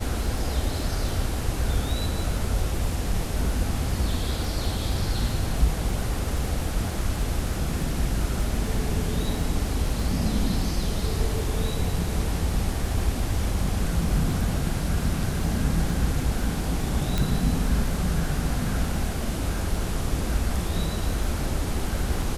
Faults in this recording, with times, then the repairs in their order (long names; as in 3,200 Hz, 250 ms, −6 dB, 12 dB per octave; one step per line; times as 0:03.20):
surface crackle 23 per second −32 dBFS
0:17.18: click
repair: click removal